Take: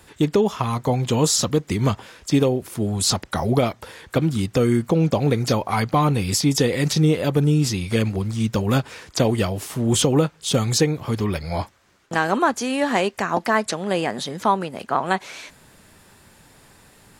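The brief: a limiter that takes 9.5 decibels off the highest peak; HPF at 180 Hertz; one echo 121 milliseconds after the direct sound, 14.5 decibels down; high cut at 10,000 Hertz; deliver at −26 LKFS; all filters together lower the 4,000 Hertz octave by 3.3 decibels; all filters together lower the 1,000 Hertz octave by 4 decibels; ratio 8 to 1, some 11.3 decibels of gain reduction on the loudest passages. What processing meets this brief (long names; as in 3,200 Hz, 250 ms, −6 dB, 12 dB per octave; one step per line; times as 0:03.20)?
high-pass filter 180 Hz
low-pass filter 10,000 Hz
parametric band 1,000 Hz −5 dB
parametric band 4,000 Hz −4 dB
downward compressor 8 to 1, threshold −27 dBFS
brickwall limiter −23.5 dBFS
single-tap delay 121 ms −14.5 dB
level +8 dB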